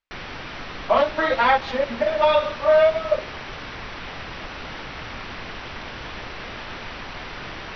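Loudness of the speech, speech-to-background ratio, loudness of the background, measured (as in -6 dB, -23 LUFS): -20.0 LUFS, 14.0 dB, -34.0 LUFS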